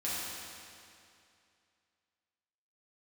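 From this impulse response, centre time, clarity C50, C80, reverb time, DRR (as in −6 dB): 164 ms, −3.5 dB, −1.5 dB, 2.5 s, −9.5 dB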